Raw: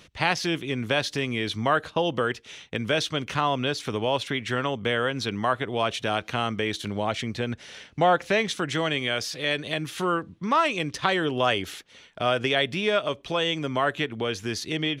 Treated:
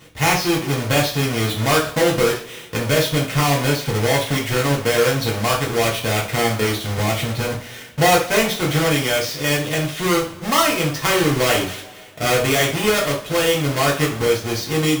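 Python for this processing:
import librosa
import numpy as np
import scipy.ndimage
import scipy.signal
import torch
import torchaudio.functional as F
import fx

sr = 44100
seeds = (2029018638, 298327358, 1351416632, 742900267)

y = fx.halfwave_hold(x, sr)
y = fx.rev_double_slope(y, sr, seeds[0], early_s=0.37, late_s=2.0, knee_db=-22, drr_db=-4.0)
y = y * 10.0 ** (-2.5 / 20.0)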